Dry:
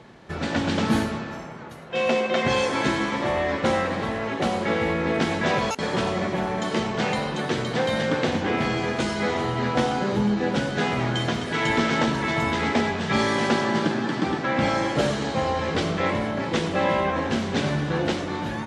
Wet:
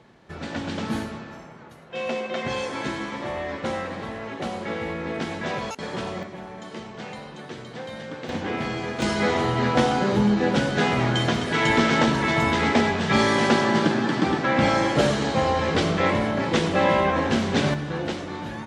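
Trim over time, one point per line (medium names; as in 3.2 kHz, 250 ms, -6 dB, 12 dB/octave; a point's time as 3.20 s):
-6 dB
from 6.23 s -12 dB
from 8.29 s -4 dB
from 9.02 s +2.5 dB
from 17.74 s -4 dB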